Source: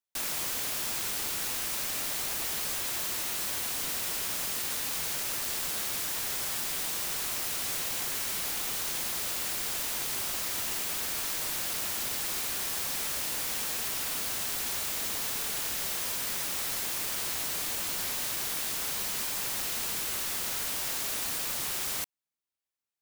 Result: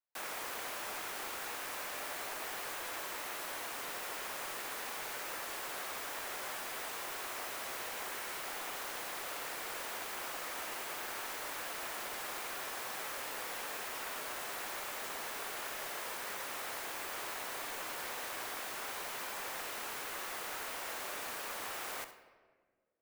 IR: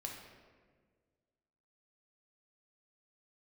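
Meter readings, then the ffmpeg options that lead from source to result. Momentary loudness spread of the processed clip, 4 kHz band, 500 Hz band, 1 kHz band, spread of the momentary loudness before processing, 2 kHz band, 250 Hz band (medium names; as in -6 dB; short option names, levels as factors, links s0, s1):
0 LU, -10.0 dB, -1.0 dB, 0.0 dB, 0 LU, -3.0 dB, -7.5 dB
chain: -filter_complex "[0:a]afreqshift=-21,acrossover=split=350 2200:gain=0.158 1 0.224[s0][s1][s2];[s0][s1][s2]amix=inputs=3:normalize=0,asplit=2[s3][s4];[1:a]atrim=start_sample=2205,adelay=67[s5];[s4][s5]afir=irnorm=-1:irlink=0,volume=0.398[s6];[s3][s6]amix=inputs=2:normalize=0"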